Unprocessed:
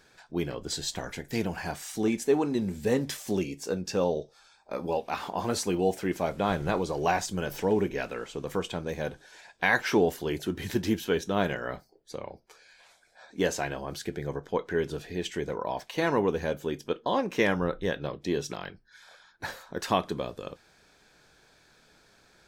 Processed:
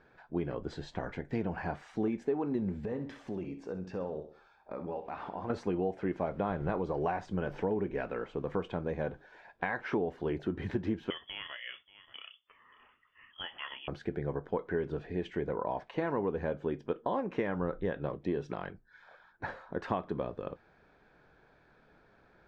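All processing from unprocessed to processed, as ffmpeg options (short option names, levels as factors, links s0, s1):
-filter_complex "[0:a]asettb=1/sr,asplit=3[s0][s1][s2];[s0]atrim=end=2.854[s3];[s1]atrim=start=2.85:end=5.5,asetpts=PTS-STARTPTS,afade=t=in:d=0.004:c=qsin,afade=t=out:st=2.646:d=0.004:c=qsin,acompressor=threshold=0.0126:ratio=2.5:attack=3.2:release=140:knee=1:detection=peak,aecho=1:1:65|130|195|260:0.282|0.113|0.0451|0.018,atrim=end_sample=116865[s4];[s2]atrim=start=5.496[s5];[s3][s4]acrossfade=d=0.004:c1=hsin:c2=qsin[s6];[s6][s5]acrossfade=d=0.004:c1=qsin:c2=hsin,asettb=1/sr,asplit=3[s7][s8][s9];[s7]atrim=end=11.104[s10];[s8]atrim=start=11.1:end=13.88,asetpts=PTS-STARTPTS,afade=t=in:d=0.004:c=qsin,afade=t=out:st=2.776:d=0.004:c=qsin,lowpass=f=3000:t=q:w=0.5098,lowpass=f=3000:t=q:w=0.6013,lowpass=f=3000:t=q:w=0.9,lowpass=f=3000:t=q:w=2.563,afreqshift=-3500,aecho=1:1:582:0.075,atrim=end_sample=122598[s11];[s9]atrim=start=13.876[s12];[s10][s11]acrossfade=d=0.004:c1=hsin:c2=qsin[s13];[s13][s12]acrossfade=d=0.004:c1=qsin:c2=hsin,acompressor=threshold=0.0398:ratio=6,lowpass=1600"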